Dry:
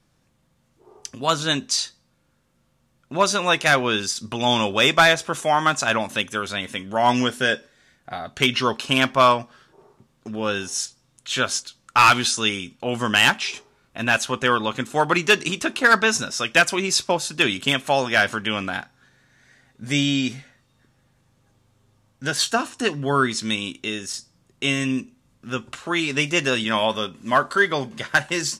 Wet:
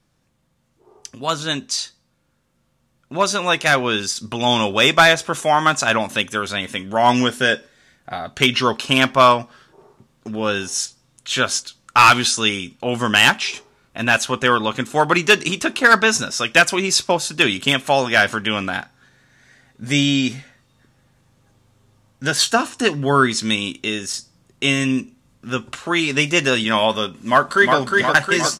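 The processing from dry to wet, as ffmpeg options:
-filter_complex "[0:a]asplit=2[s0][s1];[s1]afade=t=in:st=27.12:d=0.01,afade=t=out:st=27.76:d=0.01,aecho=0:1:360|720|1080|1440|1800|2160|2520|2880|3240|3600|3960|4320:0.707946|0.495562|0.346893|0.242825|0.169978|0.118984|0.0832891|0.0583024|0.0408117|0.0285682|0.0199977|0.0139984[s2];[s0][s2]amix=inputs=2:normalize=0,dynaudnorm=f=830:g=9:m=3.76,volume=0.891"

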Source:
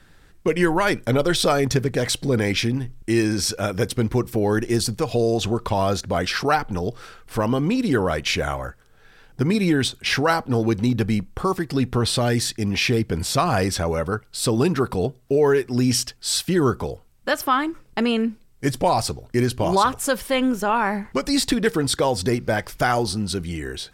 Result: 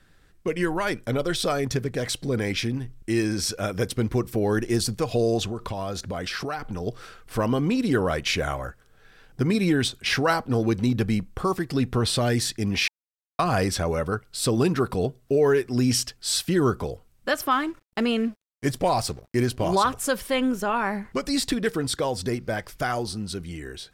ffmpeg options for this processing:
-filter_complex "[0:a]asettb=1/sr,asplit=3[s0][s1][s2];[s0]atrim=end=5.434[s3];[s1]atrim=start=5.43:end=6.87,asetpts=PTS-STARTPTS,afade=t=in:d=0.004:c=qsin,afade=t=out:st=1.436:d=0.004:c=qsin,acompressor=threshold=0.0562:ratio=4:attack=3.2:release=140:knee=1:detection=peak[s4];[s2]atrim=start=6.866[s5];[s3][s4]acrossfade=d=0.004:c1=hsin:c2=qsin[s6];[s6][s5]acrossfade=d=0.004:c1=qsin:c2=hsin,asettb=1/sr,asplit=3[s7][s8][s9];[s7]atrim=end=17.514[s10];[s8]atrim=start=17.51:end=19.69,asetpts=PTS-STARTPTS,afade=t=in:d=0.004:c=qsin,afade=t=out:st=2.176:d=0.004:c=qsin,aeval=exprs='sgn(val(0))*max(abs(val(0))-0.00596,0)':c=same[s11];[s9]atrim=start=19.686[s12];[s10][s11]acrossfade=d=0.004:c1=hsin:c2=qsin[s13];[s13][s12]acrossfade=d=0.004:c1=qsin:c2=hsin,asplit=3[s14][s15][s16];[s14]atrim=end=12.88,asetpts=PTS-STARTPTS,afade=t=out:st=12.876:d=0.004:c=hsin[s17];[s15]atrim=start=12.88:end=13.39,asetpts=PTS-STARTPTS,volume=0[s18];[s16]atrim=start=13.39,asetpts=PTS-STARTPTS,afade=t=in:d=0.004:c=hsin[s19];[s17][s18][s19]concat=n=3:v=0:a=1,bandreject=f=880:w=12,dynaudnorm=f=470:g=13:m=1.78,volume=0.501"

